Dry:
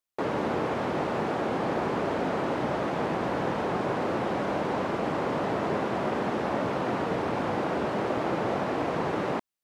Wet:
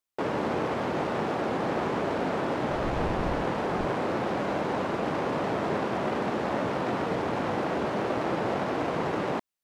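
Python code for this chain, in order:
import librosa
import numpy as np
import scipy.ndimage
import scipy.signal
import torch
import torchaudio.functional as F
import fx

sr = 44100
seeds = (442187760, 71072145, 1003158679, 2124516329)

y = fx.self_delay(x, sr, depth_ms=0.15)
y = fx.dmg_wind(y, sr, seeds[0], corner_hz=110.0, level_db=-29.0, at=(2.68, 3.84), fade=0.02)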